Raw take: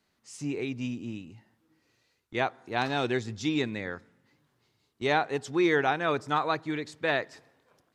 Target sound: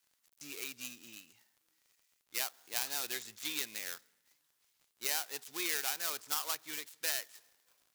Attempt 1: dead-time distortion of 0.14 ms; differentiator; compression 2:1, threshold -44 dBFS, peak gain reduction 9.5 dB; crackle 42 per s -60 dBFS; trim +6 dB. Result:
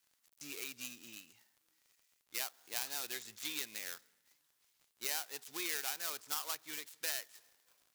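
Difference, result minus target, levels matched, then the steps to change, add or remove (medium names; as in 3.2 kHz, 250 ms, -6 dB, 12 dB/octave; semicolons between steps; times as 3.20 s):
compression: peak gain reduction +3.5 dB
change: compression 2:1, threshold -37 dBFS, peak gain reduction 6 dB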